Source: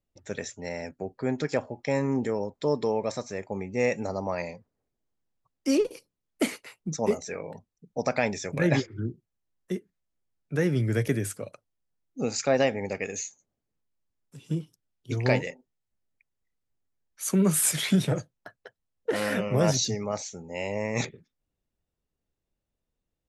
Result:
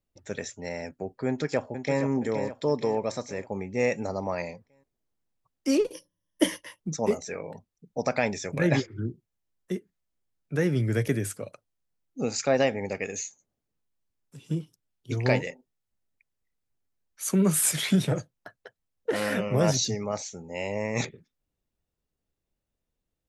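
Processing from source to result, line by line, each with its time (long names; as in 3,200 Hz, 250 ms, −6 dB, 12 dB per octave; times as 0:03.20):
0:01.27–0:02.01: delay throw 470 ms, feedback 50%, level −8 dB
0:05.93–0:06.80: EQ curve with evenly spaced ripples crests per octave 1.2, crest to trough 16 dB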